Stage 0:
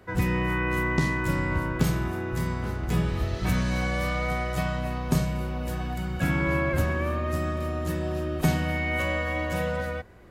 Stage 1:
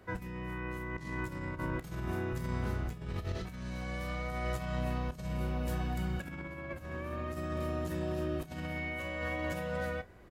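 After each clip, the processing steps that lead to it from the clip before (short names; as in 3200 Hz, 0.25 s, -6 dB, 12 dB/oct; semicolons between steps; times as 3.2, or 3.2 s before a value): negative-ratio compressor -29 dBFS, ratio -0.5; doubler 32 ms -14 dB; gain -7.5 dB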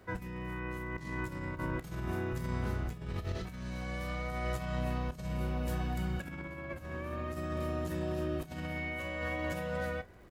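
crackle 76/s -55 dBFS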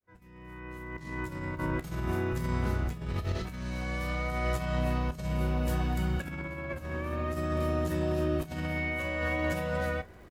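opening faded in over 1.83 s; doubler 13 ms -13.5 dB; gain +4.5 dB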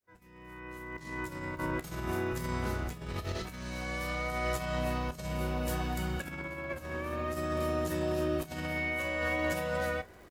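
tone controls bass -6 dB, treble +4 dB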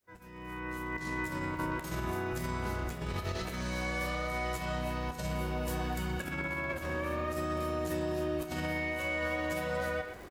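compressor 5:1, threshold -38 dBFS, peak gain reduction 10.5 dB; speakerphone echo 0.12 s, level -6 dB; gain +6 dB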